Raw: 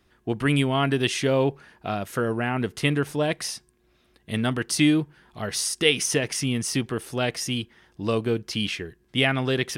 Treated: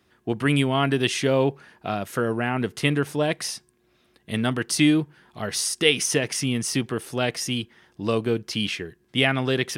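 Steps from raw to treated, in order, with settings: high-pass 91 Hz; trim +1 dB

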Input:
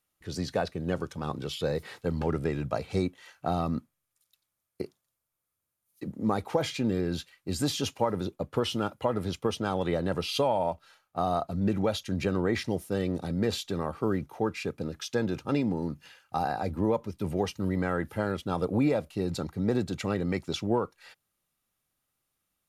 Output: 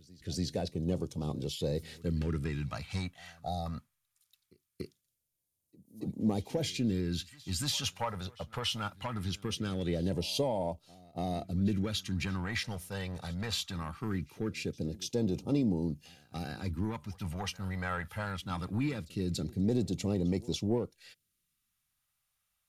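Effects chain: saturation -18.5 dBFS, distortion -19 dB; phase shifter stages 2, 0.21 Hz, lowest notch 310–1500 Hz; time-frequency box 3.42–3.66 s, 850–3400 Hz -21 dB; reverse echo 286 ms -22.5 dB

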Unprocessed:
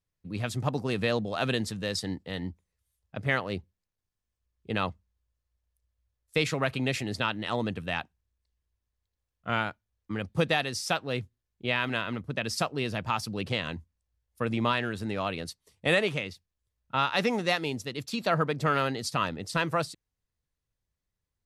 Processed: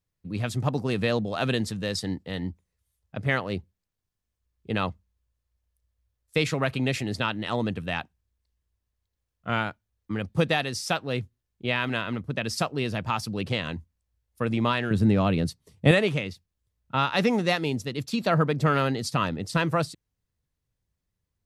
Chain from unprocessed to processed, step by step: peaking EQ 140 Hz +3 dB 3 oct, from 14.91 s +15 dB, from 15.91 s +6 dB; trim +1 dB

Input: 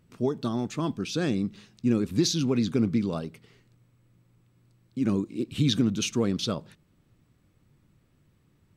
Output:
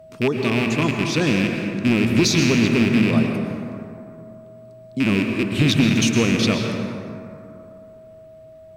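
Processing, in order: rattle on loud lows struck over -28 dBFS, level -19 dBFS; whistle 640 Hz -49 dBFS; sine folder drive 3 dB, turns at -11 dBFS; plate-style reverb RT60 2.7 s, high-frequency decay 0.4×, pre-delay 100 ms, DRR 2.5 dB

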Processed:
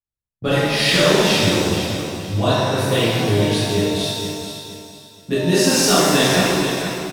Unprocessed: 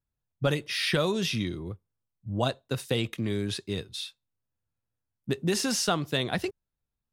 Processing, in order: gate -42 dBFS, range -18 dB; on a send: feedback delay 469 ms, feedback 30%, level -9 dB; on the sum: pitch-shifted reverb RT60 1.6 s, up +7 st, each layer -8 dB, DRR -11.5 dB

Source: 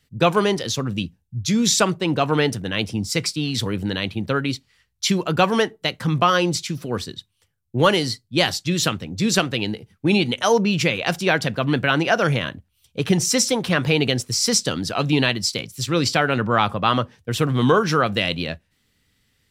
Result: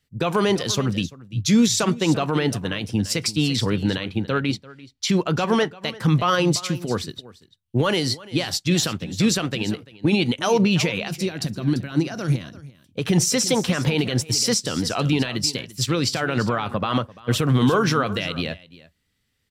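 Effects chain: peak limiter -14.5 dBFS, peak gain reduction 11 dB; 3.56–5.71 s: treble shelf 10 kHz -10.5 dB; 11.08–12.61 s: time-frequency box 400–3700 Hz -9 dB; delay 342 ms -13.5 dB; upward expansion 1.5:1, over -44 dBFS; trim +5.5 dB

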